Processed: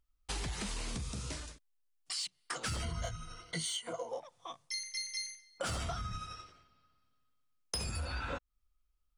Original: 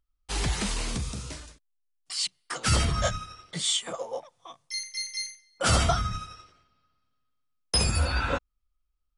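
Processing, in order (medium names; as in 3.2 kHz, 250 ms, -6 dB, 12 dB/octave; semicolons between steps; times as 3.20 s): saturation -17 dBFS, distortion -18 dB; 2.82–4.09 s: rippled EQ curve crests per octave 1.9, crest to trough 14 dB; compression 6:1, threshold -36 dBFS, peak gain reduction 15.5 dB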